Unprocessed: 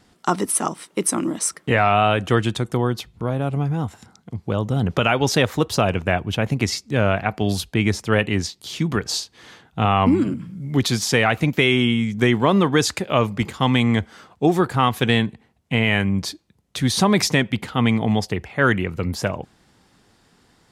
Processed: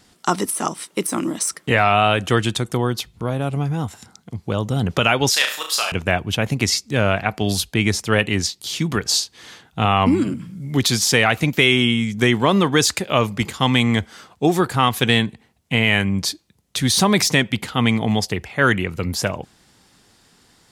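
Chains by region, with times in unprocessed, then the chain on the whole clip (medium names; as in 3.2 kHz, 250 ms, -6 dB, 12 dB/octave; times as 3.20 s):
5.30–5.92 s: high-pass 1.2 kHz + band-stop 6.1 kHz, Q 16 + flutter echo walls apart 6 m, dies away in 0.42 s
whole clip: de-esser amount 40%; treble shelf 2.8 kHz +8.5 dB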